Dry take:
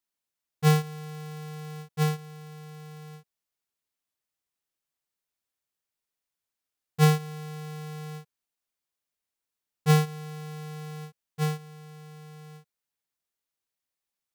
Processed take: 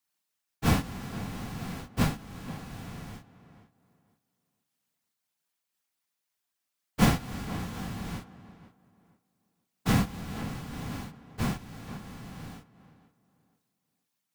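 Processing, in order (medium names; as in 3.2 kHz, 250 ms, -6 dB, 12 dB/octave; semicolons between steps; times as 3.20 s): high-pass 130 Hz; peaking EQ 450 Hz -7.5 dB 0.69 oct; in parallel at +3 dB: compression, threshold -38 dBFS, peak gain reduction 20.5 dB; on the sum: whisper effect; on a send: tape echo 483 ms, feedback 27%, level -12 dB, low-pass 1.7 kHz; on the sum: random flutter of the level, depth 55%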